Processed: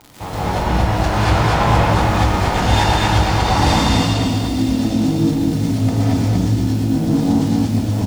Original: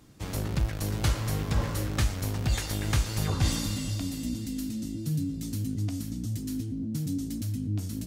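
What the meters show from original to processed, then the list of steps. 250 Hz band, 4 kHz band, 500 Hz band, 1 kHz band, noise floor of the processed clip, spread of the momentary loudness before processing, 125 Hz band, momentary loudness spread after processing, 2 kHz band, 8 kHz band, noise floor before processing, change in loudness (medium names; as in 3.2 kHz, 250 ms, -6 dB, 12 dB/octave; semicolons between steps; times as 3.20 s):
+15.5 dB, +14.0 dB, +18.5 dB, +24.0 dB, -22 dBFS, 6 LU, +12.5 dB, 4 LU, +17.0 dB, +7.0 dB, -36 dBFS, +14.5 dB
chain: low-pass 4.8 kHz 12 dB/octave; peaking EQ 820 Hz +15 dB 1.1 oct; level rider gain up to 7 dB; tremolo triangle 0.88 Hz, depth 50%; crackle 120 per s -30 dBFS; saturation -24.5 dBFS, distortion -8 dB; on a send: loudspeakers at several distances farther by 38 m -11 dB, 82 m -3 dB; on the sum: gated-style reverb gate 250 ms rising, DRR -7 dB; trim +4.5 dB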